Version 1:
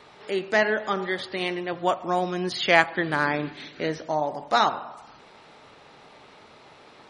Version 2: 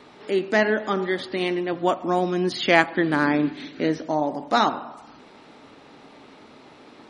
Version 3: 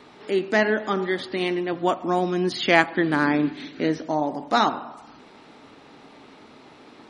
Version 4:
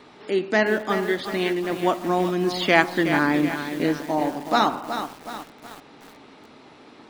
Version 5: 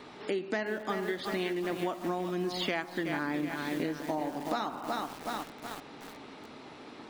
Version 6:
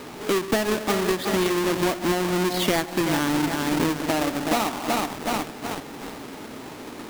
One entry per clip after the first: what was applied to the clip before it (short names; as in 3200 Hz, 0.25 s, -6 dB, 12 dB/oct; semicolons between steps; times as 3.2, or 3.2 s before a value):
bell 270 Hz +11.5 dB 0.83 oct
bell 560 Hz -2.5 dB 0.28 oct
lo-fi delay 0.37 s, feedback 55%, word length 6-bit, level -8.5 dB
compressor 12:1, threshold -29 dBFS, peak gain reduction 18.5 dB
half-waves squared off; gain +5.5 dB